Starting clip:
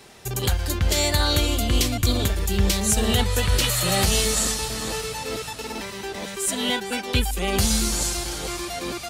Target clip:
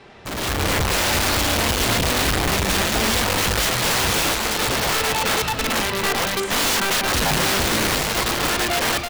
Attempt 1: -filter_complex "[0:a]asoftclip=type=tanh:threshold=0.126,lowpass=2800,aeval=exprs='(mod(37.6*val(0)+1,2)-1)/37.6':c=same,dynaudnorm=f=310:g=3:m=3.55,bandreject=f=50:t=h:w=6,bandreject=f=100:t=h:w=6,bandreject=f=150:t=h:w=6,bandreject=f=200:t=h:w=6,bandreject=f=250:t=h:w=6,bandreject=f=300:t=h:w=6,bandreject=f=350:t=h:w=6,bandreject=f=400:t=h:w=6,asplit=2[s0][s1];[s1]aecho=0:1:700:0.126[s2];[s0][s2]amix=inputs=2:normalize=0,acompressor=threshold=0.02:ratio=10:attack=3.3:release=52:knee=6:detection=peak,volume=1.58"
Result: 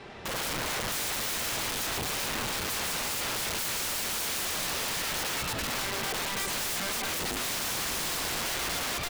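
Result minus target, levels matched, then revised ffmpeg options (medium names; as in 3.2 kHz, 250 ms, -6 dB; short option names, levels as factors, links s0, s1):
compression: peak gain reduction +11.5 dB; saturation: distortion -9 dB
-filter_complex "[0:a]asoftclip=type=tanh:threshold=0.0316,lowpass=2800,aeval=exprs='(mod(37.6*val(0)+1,2)-1)/37.6':c=same,dynaudnorm=f=310:g=3:m=3.55,bandreject=f=50:t=h:w=6,bandreject=f=100:t=h:w=6,bandreject=f=150:t=h:w=6,bandreject=f=200:t=h:w=6,bandreject=f=250:t=h:w=6,bandreject=f=300:t=h:w=6,bandreject=f=350:t=h:w=6,bandreject=f=400:t=h:w=6,asplit=2[s0][s1];[s1]aecho=0:1:700:0.126[s2];[s0][s2]amix=inputs=2:normalize=0,volume=1.58"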